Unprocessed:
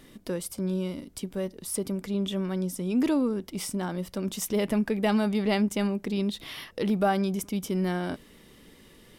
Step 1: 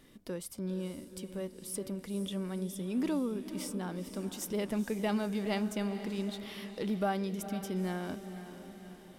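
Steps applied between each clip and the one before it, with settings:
feedback delay with all-pass diffusion 478 ms, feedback 54%, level −11 dB
level −7.5 dB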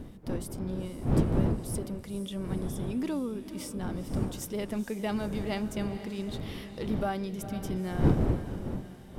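wind on the microphone 230 Hz −33 dBFS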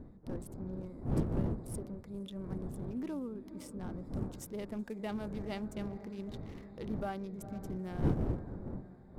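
adaptive Wiener filter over 15 samples
level −7 dB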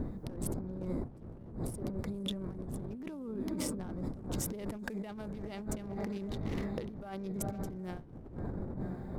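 compressor whose output falls as the input rises −47 dBFS, ratio −1
level +6.5 dB

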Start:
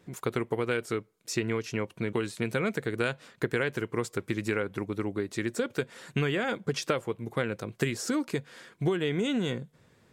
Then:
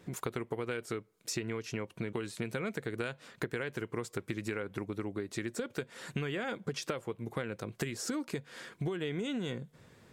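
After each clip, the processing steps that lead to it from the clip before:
downward compressor 3 to 1, threshold −39 dBFS, peak gain reduction 12.5 dB
level +3 dB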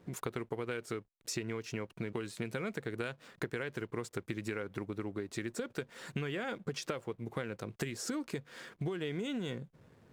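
slack as between gear wheels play −56.5 dBFS
level −1.5 dB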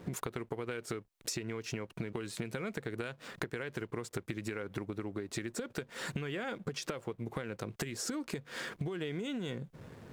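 downward compressor 6 to 1, threshold −46 dBFS, peak gain reduction 14 dB
level +10.5 dB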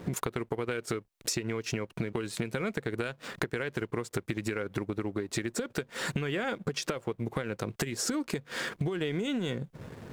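transient designer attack −1 dB, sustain −6 dB
level +6.5 dB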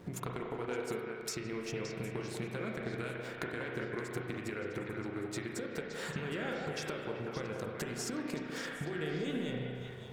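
echo through a band-pass that steps 190 ms, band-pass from 630 Hz, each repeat 1.4 octaves, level −1 dB
spring reverb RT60 1.9 s, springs 32/40 ms, chirp 70 ms, DRR 0.5 dB
level −8.5 dB

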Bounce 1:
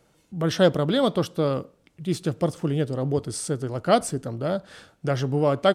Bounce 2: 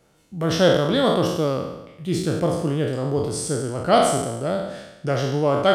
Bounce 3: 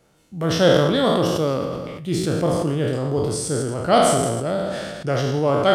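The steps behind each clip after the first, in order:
peak hold with a decay on every bin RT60 0.97 s
delay that plays each chunk backwards 110 ms, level −13 dB; level that may fall only so fast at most 28 dB per second

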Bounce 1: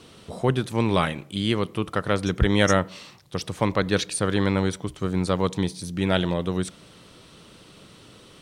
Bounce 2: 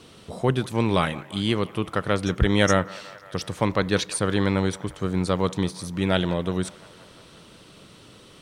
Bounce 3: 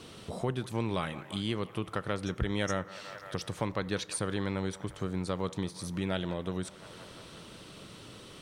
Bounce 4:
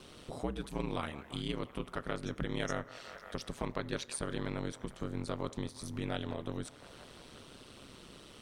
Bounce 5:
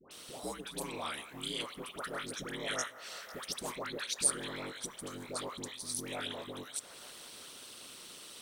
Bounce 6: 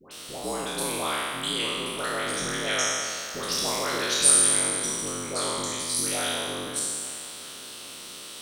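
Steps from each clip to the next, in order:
delay with a band-pass on its return 175 ms, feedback 71%, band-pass 1,200 Hz, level −18 dB
downward compressor 2 to 1, threshold −37 dBFS, peak gain reduction 13 dB; on a send at −20 dB: convolution reverb RT60 0.80 s, pre-delay 4 ms
ring modulation 70 Hz; level −1.5 dB
RIAA equalisation recording; all-pass dispersion highs, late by 111 ms, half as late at 1,100 Hz
peak hold with a decay on every bin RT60 2.11 s; level +6 dB

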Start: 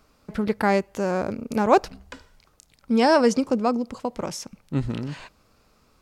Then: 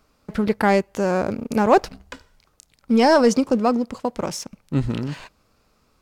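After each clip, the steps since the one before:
leveller curve on the samples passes 1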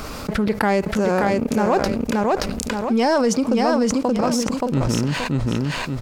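repeating echo 576 ms, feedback 16%, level −4 dB
envelope flattener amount 70%
level −5 dB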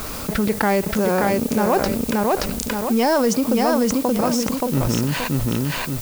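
background noise blue −34 dBFS

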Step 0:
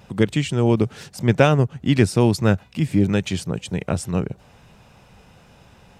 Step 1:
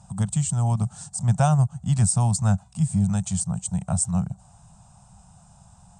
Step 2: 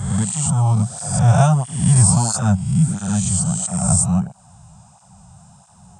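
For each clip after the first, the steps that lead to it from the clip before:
drawn EQ curve 190 Hz 0 dB, 300 Hz −28 dB, 480 Hz −24 dB, 710 Hz 0 dB, 1,300 Hz −7 dB, 2,100 Hz −22 dB, 5,400 Hz −4 dB, 8,500 Hz +14 dB, 13,000 Hz −28 dB
peak hold with a rise ahead of every peak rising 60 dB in 1.13 s; through-zero flanger with one copy inverted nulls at 1.5 Hz, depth 4.6 ms; level +6 dB

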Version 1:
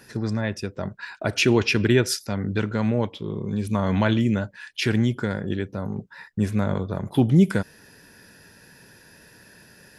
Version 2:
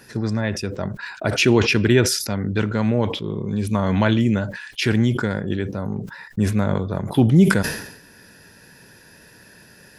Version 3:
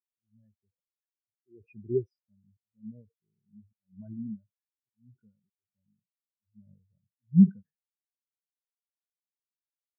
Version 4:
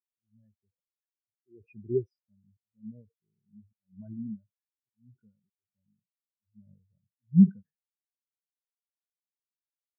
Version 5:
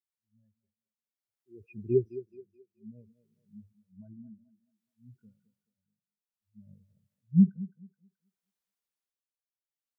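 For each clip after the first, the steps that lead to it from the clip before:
level that may fall only so fast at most 72 dB per second; level +2.5 dB
volume swells 309 ms; every bin expanded away from the loudest bin 4 to 1; level −7.5 dB
no processing that can be heard
amplitude tremolo 0.58 Hz, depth 86%; automatic gain control gain up to 9.5 dB; feedback echo with a high-pass in the loop 214 ms, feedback 45%, high-pass 360 Hz, level −11.5 dB; level −5 dB

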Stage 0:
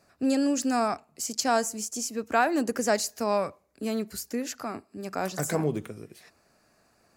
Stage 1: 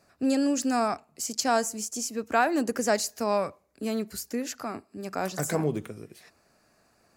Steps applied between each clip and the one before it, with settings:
no processing that can be heard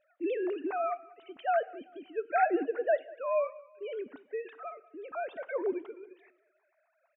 three sine waves on the formant tracks
repeating echo 192 ms, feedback 39%, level −21.5 dB
on a send at −17 dB: convolution reverb, pre-delay 3 ms
on the sum: level −5 dB

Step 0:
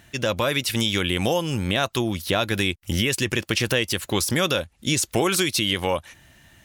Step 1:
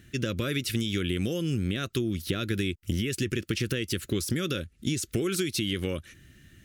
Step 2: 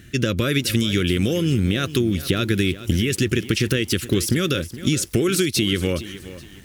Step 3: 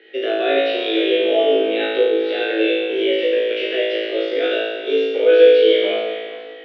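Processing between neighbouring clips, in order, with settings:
drawn EQ curve 390 Hz 0 dB, 900 Hz −27 dB, 1,300 Hz −7 dB; downward compressor, threshold −26 dBFS, peak gain reduction 7 dB; level +1.5 dB
feedback echo at a low word length 419 ms, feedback 35%, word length 8 bits, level −14.5 dB; level +8.5 dB
single-sideband voice off tune +130 Hz 240–3,400 Hz; harmonic and percussive parts rebalanced percussive −11 dB; flutter between parallel walls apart 3.1 metres, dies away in 1.3 s; level +2 dB

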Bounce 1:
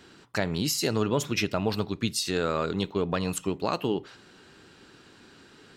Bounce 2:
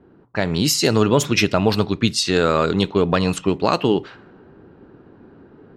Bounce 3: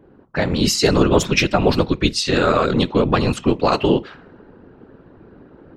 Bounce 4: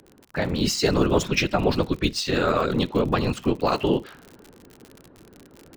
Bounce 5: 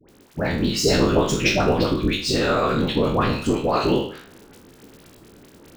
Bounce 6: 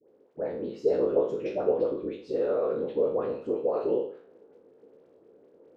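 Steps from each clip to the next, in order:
low-pass that shuts in the quiet parts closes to 640 Hz, open at −22.5 dBFS; automatic gain control gain up to 5.5 dB; level +4.5 dB
high-shelf EQ 9,400 Hz −10 dB; random phases in short frames; level +1.5 dB
running median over 3 samples; surface crackle 71 per second −26 dBFS; level −5.5 dB
peak hold with a decay on every bin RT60 0.49 s; all-pass dispersion highs, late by 90 ms, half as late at 1,000 Hz
resonant band-pass 480 Hz, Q 4.3

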